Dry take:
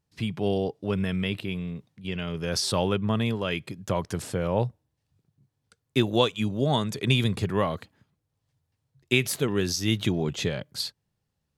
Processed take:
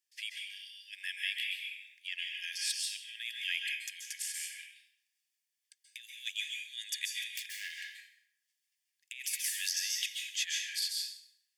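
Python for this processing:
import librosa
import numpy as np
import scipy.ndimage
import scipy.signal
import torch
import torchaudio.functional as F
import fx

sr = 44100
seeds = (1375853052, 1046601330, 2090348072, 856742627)

y = fx.self_delay(x, sr, depth_ms=0.34, at=(7.34, 7.74))
y = fx.high_shelf(y, sr, hz=2500.0, db=7.0)
y = fx.notch(y, sr, hz=4000.0, q=7.3)
y = fx.over_compress(y, sr, threshold_db=-26.0, ratio=-0.5)
y = fx.brickwall_highpass(y, sr, low_hz=1600.0)
y = fx.rev_plate(y, sr, seeds[0], rt60_s=0.76, hf_ratio=0.75, predelay_ms=120, drr_db=0.0)
y = fx.band_squash(y, sr, depth_pct=100, at=(9.44, 9.99))
y = y * librosa.db_to_amplitude(-6.5)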